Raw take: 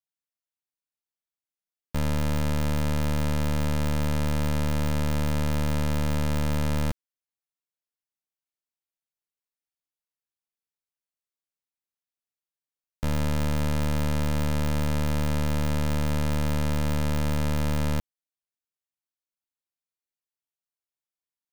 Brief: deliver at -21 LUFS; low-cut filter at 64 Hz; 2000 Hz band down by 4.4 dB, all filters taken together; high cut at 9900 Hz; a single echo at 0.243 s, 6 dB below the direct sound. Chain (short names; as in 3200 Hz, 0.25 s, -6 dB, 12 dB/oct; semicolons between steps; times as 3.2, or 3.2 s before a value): HPF 64 Hz; LPF 9900 Hz; bell 2000 Hz -5.5 dB; echo 0.243 s -6 dB; gain +8 dB